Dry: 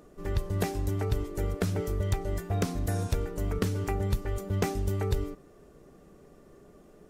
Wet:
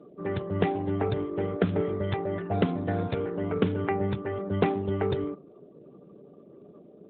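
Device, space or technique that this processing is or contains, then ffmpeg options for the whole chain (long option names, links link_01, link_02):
mobile call with aggressive noise cancelling: -filter_complex "[0:a]asettb=1/sr,asplit=3[link_01][link_02][link_03];[link_01]atrim=end=0.634[link_04];[link_02]atrim=start=0.63:end=1.24,asetpts=PTS-STARTPTS,afade=type=in:duration=0.004:curve=qsin,afade=type=out:start_time=0.606:duration=0.004:curve=qsin,adynamicequalizer=threshold=0.00316:dfrequency=740:dqfactor=4.1:tfrequency=740:tqfactor=4.1:attack=5:release=100:ratio=0.375:range=2:mode=boostabove:tftype=bell[link_05];[link_03]atrim=start=1.236[link_06];[link_04][link_05]acrossfade=duration=0.004:curve1=hsin:curve2=qsin[link_07];[link_07][link_06]acrossfade=duration=0.004:curve1=qsin:curve2=hsin,highpass=140,afftdn=noise_reduction=23:noise_floor=-54,volume=6.5dB" -ar 8000 -c:a libopencore_amrnb -b:a 12200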